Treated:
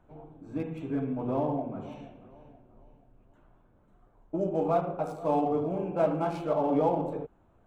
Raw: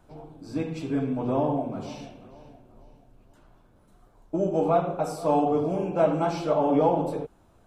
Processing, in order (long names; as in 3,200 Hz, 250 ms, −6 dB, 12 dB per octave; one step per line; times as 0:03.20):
adaptive Wiener filter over 9 samples
level −4 dB